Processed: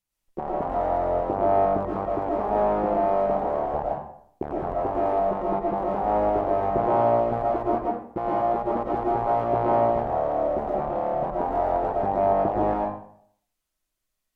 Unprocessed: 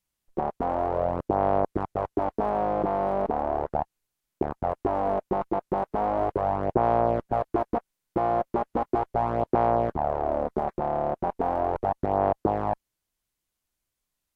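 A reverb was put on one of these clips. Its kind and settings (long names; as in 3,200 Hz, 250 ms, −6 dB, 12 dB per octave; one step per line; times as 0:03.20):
comb and all-pass reverb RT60 0.65 s, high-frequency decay 0.7×, pre-delay 70 ms, DRR −4.5 dB
level −4 dB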